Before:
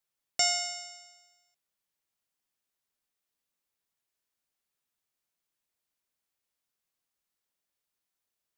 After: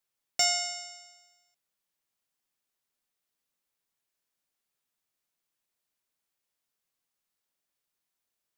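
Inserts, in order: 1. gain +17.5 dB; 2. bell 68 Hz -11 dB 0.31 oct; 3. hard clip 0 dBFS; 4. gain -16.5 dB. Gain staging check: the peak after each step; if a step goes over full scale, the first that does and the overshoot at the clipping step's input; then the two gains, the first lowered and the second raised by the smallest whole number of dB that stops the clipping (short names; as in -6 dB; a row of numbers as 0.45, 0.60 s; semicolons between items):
+4.0, +4.0, 0.0, -16.5 dBFS; step 1, 4.0 dB; step 1 +13.5 dB, step 4 -12.5 dB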